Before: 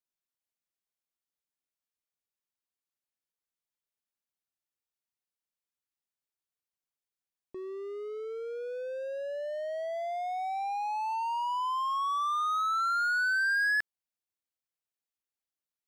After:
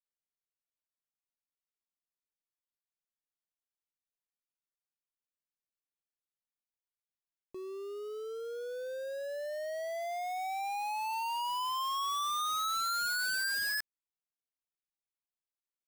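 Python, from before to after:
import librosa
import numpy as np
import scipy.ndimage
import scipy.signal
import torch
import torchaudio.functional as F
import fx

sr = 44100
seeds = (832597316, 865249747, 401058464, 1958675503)

y = fx.dead_time(x, sr, dead_ms=0.16)
y = F.gain(torch.from_numpy(y), -2.5).numpy()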